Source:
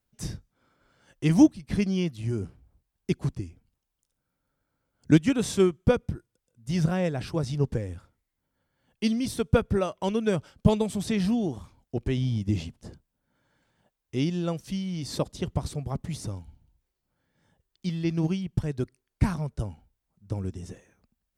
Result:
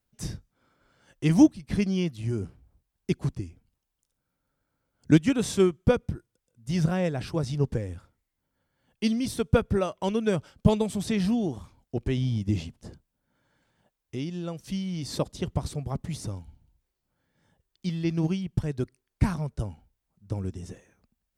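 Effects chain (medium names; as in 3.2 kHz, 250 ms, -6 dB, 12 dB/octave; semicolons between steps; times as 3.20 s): 12.59–14.64 s: compression 2:1, threshold -34 dBFS, peak gain reduction 7 dB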